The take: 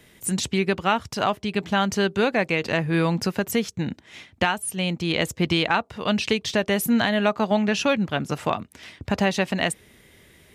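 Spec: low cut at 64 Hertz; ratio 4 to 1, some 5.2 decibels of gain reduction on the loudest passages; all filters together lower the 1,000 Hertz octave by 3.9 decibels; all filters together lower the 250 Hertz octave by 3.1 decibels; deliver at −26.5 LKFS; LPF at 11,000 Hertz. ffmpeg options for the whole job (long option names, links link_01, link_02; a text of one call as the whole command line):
ffmpeg -i in.wav -af "highpass=64,lowpass=11000,equalizer=frequency=250:width_type=o:gain=-4,equalizer=frequency=1000:width_type=o:gain=-5,acompressor=threshold=-25dB:ratio=4,volume=3dB" out.wav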